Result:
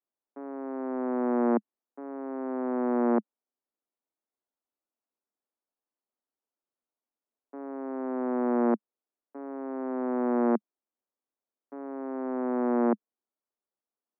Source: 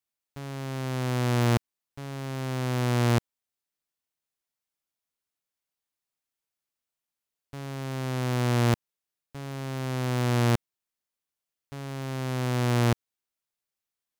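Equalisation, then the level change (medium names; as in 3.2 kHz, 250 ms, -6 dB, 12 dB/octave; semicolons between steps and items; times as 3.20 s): Gaussian low-pass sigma 7.3 samples; steep high-pass 210 Hz 72 dB/octave; +4.0 dB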